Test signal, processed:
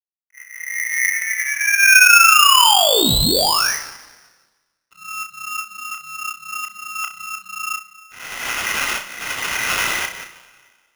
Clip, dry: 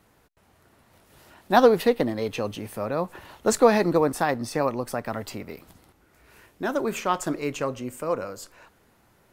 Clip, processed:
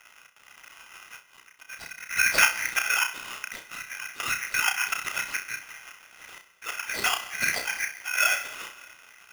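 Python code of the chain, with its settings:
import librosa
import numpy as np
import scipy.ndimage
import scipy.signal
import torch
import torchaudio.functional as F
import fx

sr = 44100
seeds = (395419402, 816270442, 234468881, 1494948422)

p1 = fx.env_lowpass(x, sr, base_hz=1100.0, full_db=-20.0)
p2 = fx.lpc_vocoder(p1, sr, seeds[0], excitation='whisper', order=8)
p3 = fx.low_shelf(p2, sr, hz=96.0, db=2.5)
p4 = fx.over_compress(p3, sr, threshold_db=-27.0, ratio=-0.5)
p5 = fx.auto_swell(p4, sr, attack_ms=532.0)
p6 = np.sign(p5) * np.maximum(np.abs(p5) - 10.0 ** (-57.0 / 20.0), 0.0)
p7 = fx.graphic_eq_10(p6, sr, hz=(250, 500, 1000), db=(-8, 10, 4))
p8 = p7 + fx.room_flutter(p7, sr, wall_m=5.5, rt60_s=0.31, dry=0)
p9 = fx.rev_plate(p8, sr, seeds[1], rt60_s=1.6, hf_ratio=0.8, predelay_ms=115, drr_db=16.0)
p10 = p9 * np.sign(np.sin(2.0 * np.pi * 2000.0 * np.arange(len(p9)) / sr))
y = F.gain(torch.from_numpy(p10), 7.0).numpy()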